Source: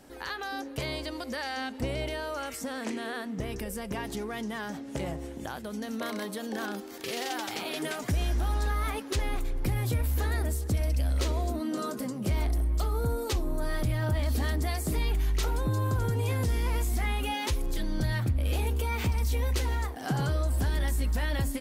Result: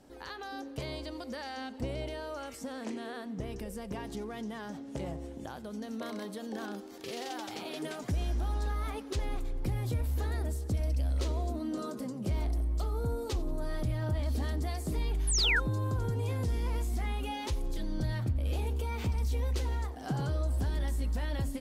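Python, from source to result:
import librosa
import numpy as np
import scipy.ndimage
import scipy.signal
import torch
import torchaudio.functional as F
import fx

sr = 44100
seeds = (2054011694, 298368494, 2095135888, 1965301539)

p1 = fx.peak_eq(x, sr, hz=1900.0, db=-5.5, octaves=1.6)
p2 = p1 + fx.echo_feedback(p1, sr, ms=90, feedback_pct=51, wet_db=-21.0, dry=0)
p3 = fx.spec_paint(p2, sr, seeds[0], shape='fall', start_s=15.27, length_s=0.33, low_hz=1300.0, high_hz=11000.0, level_db=-23.0)
p4 = fx.high_shelf(p3, sr, hz=9400.0, db=-11.5)
y = p4 * librosa.db_to_amplitude(-3.5)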